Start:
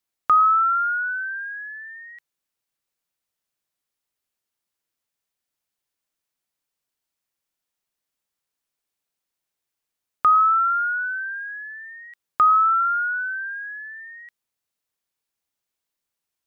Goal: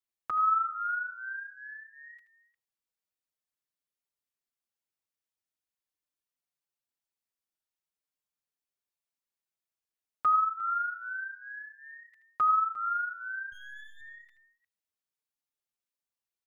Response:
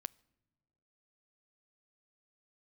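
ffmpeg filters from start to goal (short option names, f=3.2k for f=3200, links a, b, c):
-filter_complex "[0:a]asettb=1/sr,asplit=3[a][b][c];[a]atrim=end=13.524[d];[b]atrim=start=13.52:end=14.01,asetpts=PTS-STARTPTS,afade=t=in:d=0.004:c=qsin,afade=t=out:st=0.486:d=0.004:c=qsin,aeval=exprs='if(lt(val(0),0),0.251*val(0),val(0))':c=same[e];[c]atrim=start=14.006[f];[d][e]acrossfade=d=0.004:c1=hsin:c2=qsin[g];[g][f]acrossfade=d=0.004:c1=qsin:c2=hsin,aecho=1:1:78|353:0.266|0.133[h];[1:a]atrim=start_sample=2205,atrim=end_sample=6615[i];[h][i]afir=irnorm=-1:irlink=0,asplit=2[j][k];[k]adelay=5.5,afreqshift=-0.43[l];[j][l]amix=inputs=2:normalize=1,volume=-4.5dB"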